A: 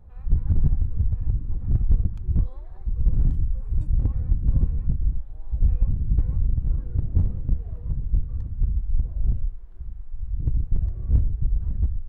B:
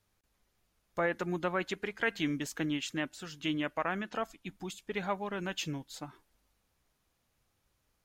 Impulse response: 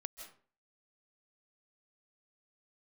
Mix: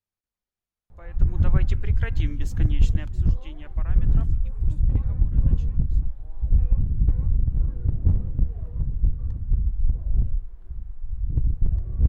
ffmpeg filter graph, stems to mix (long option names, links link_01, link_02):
-filter_complex "[0:a]adelay=900,volume=1dB[link_01];[1:a]volume=-6.5dB,afade=type=in:start_time=1.18:duration=0.3:silence=0.237137,afade=type=out:start_time=2.9:duration=0.3:silence=0.398107,afade=type=out:start_time=4.34:duration=0.42:silence=0.334965,asplit=2[link_02][link_03];[link_03]volume=-12.5dB[link_04];[2:a]atrim=start_sample=2205[link_05];[link_04][link_05]afir=irnorm=-1:irlink=0[link_06];[link_01][link_02][link_06]amix=inputs=3:normalize=0"